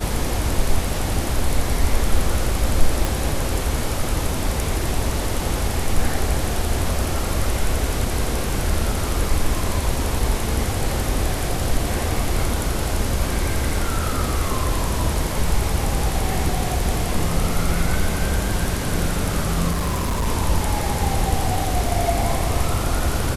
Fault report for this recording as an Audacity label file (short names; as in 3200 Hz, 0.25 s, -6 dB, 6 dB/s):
3.050000	3.050000	pop
19.710000	20.270000	clipped -18 dBFS